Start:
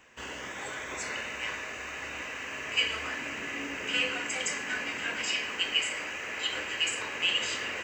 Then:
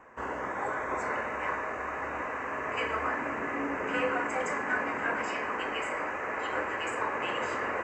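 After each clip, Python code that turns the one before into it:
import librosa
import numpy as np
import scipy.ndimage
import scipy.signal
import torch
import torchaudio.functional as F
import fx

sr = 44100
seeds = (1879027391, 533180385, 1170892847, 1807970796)

y = fx.curve_eq(x, sr, hz=(150.0, 1100.0, 2100.0, 3200.0, 9000.0), db=(0, 8, -5, -21, -14))
y = F.gain(torch.from_numpy(y), 3.0).numpy()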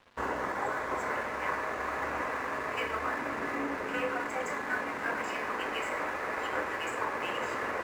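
y = fx.rider(x, sr, range_db=4, speed_s=0.5)
y = np.sign(y) * np.maximum(np.abs(y) - 10.0 ** (-48.0 / 20.0), 0.0)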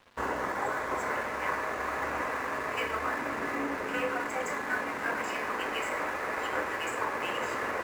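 y = fx.high_shelf(x, sr, hz=7500.0, db=5.5)
y = F.gain(torch.from_numpy(y), 1.0).numpy()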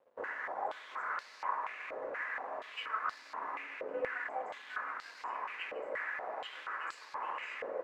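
y = fx.filter_held_bandpass(x, sr, hz=4.2, low_hz=530.0, high_hz=4500.0)
y = F.gain(torch.from_numpy(y), 1.0).numpy()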